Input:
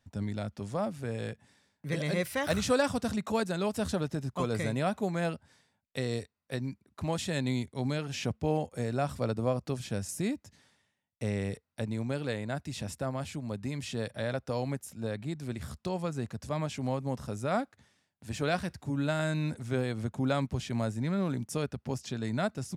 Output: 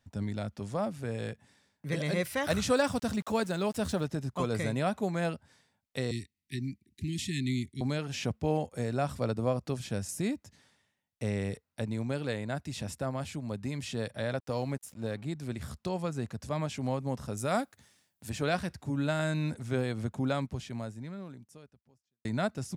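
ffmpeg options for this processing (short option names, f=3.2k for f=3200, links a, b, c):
-filter_complex "[0:a]asettb=1/sr,asplit=3[a][b][c];[a]atrim=end=2.734[d];[b]atrim=start=2.73:end=4.06,asetpts=PTS-STARTPTS,afade=t=in:d=0.004:c=qsin,afade=t=out:st=1.326:d=0.004:c=qsin,aeval=exprs='val(0)*gte(abs(val(0)),0.00422)':c=same[e];[c]atrim=start=4.056[f];[d][e]acrossfade=d=0.004:c1=hsin:c2=qsin[g];[g][f]acrossfade=d=0.004:c1=qsin:c2=hsin,asettb=1/sr,asplit=3[h][i][j];[h]atrim=end=6.114[k];[i]atrim=start=6.11:end=7.81,asetpts=PTS-STARTPTS,afade=t=in:d=0.004:c=qsin,afade=t=out:st=1.696:d=0.004:c=qsin,asuperstop=centerf=830:order=20:qfactor=0.57[l];[j]atrim=start=7.806[m];[k][l]acrossfade=d=0.004:c1=hsin:c2=qsin[n];[n][m]acrossfade=d=0.004:c1=qsin:c2=hsin,asettb=1/sr,asplit=3[o][p][q];[o]atrim=end=14.394[r];[p]atrim=start=14.39:end=15.22,asetpts=PTS-STARTPTS,afade=t=in:d=0.004:c=qsin,afade=t=out:st=0.826:d=0.004:c=qsin,aeval=exprs='sgn(val(0))*max(abs(val(0))-0.00168,0)':c=same[s];[q]atrim=start=15.216[t];[r][s]acrossfade=d=0.004:c1=hsin:c2=qsin[u];[u][t]acrossfade=d=0.004:c1=qsin:c2=hsin,asettb=1/sr,asplit=3[v][w][x];[v]atrim=end=17.374[y];[w]atrim=start=17.37:end=18.3,asetpts=PTS-STARTPTS,afade=t=in:d=0.004:c=qsin,afade=t=out:st=0.926:d=0.004:c=qsin,aemphasis=mode=production:type=50kf[z];[x]atrim=start=18.296[aa];[y][z]acrossfade=d=0.004:c1=hsin:c2=qsin[ab];[ab][aa]acrossfade=d=0.004:c1=qsin:c2=hsin,asplit=2[ac][ad];[ac]atrim=end=22.25,asetpts=PTS-STARTPTS,afade=t=out:st=20.13:d=2.12:c=qua[ae];[ad]atrim=start=22.25,asetpts=PTS-STARTPTS,afade=t=in:d=0.004:c=hsin[af];[ae][af]concat=n=2:v=0:a=1"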